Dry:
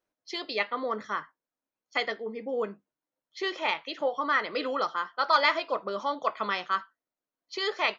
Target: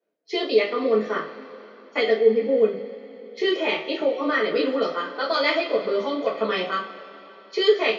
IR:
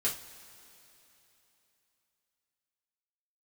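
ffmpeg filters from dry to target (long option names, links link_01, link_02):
-filter_complex "[0:a]highpass=140,lowshelf=frequency=720:width_type=q:width=1.5:gain=8,bandreject=frequency=50:width_type=h:width=6,bandreject=frequency=100:width_type=h:width=6,bandreject=frequency=150:width_type=h:width=6,bandreject=frequency=200:width_type=h:width=6,agate=range=-6dB:threshold=-48dB:ratio=16:detection=peak,bass=frequency=250:gain=-10,treble=frequency=4000:gain=-11,acrossover=split=330|2500[link_01][link_02][link_03];[link_02]acompressor=threshold=-35dB:ratio=5[link_04];[link_01][link_04][link_03]amix=inputs=3:normalize=0[link_05];[1:a]atrim=start_sample=2205[link_06];[link_05][link_06]afir=irnorm=-1:irlink=0,volume=5dB"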